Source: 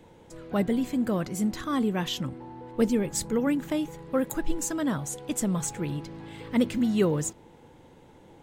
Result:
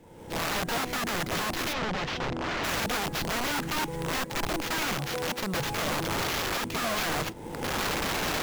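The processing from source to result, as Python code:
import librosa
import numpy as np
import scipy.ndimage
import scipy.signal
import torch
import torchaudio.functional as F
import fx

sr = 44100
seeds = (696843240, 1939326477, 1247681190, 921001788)

y = scipy.signal.medfilt(x, 5)
y = fx.recorder_agc(y, sr, target_db=-15.5, rise_db_per_s=43.0, max_gain_db=30)
y = fx.highpass(y, sr, hz=fx.line((4.94, 120.0), (5.53, 470.0)), slope=6, at=(4.94, 5.53), fade=0.02)
y = fx.sample_hold(y, sr, seeds[0], rate_hz=9000.0, jitter_pct=20)
y = (np.mod(10.0 ** (22.5 / 20.0) * y + 1.0, 2.0) - 1.0) / 10.0 ** (22.5 / 20.0)
y = fx.air_absorb(y, sr, metres=140.0, at=(1.72, 2.63), fade=0.02)
y = F.gain(torch.from_numpy(y), -2.0).numpy()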